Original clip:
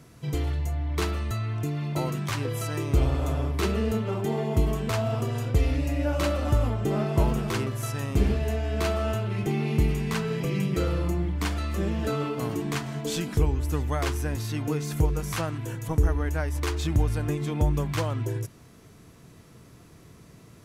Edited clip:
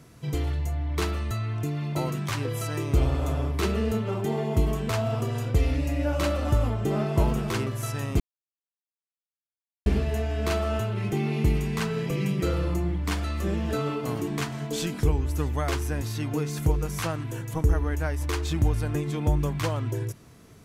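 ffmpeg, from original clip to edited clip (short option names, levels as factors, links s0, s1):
-filter_complex "[0:a]asplit=2[s0][s1];[s0]atrim=end=8.2,asetpts=PTS-STARTPTS,afade=t=out:st=8.196:d=0.004:c=hsin,apad=pad_dur=1.66[s2];[s1]atrim=start=8.2,asetpts=PTS-STARTPTS,afade=t=in:d=0.004:c=hsin[s3];[s2][s3]concat=n=2:v=0:a=1"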